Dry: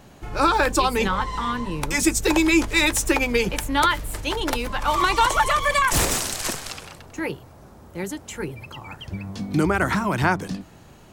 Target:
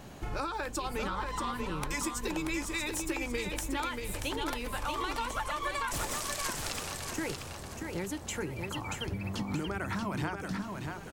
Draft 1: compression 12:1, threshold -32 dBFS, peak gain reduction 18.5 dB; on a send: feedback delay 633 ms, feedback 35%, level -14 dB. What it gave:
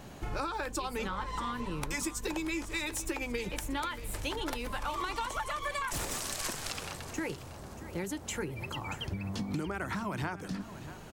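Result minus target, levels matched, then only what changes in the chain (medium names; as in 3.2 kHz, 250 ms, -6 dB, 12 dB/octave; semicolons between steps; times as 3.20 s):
echo-to-direct -9 dB
change: feedback delay 633 ms, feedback 35%, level -5 dB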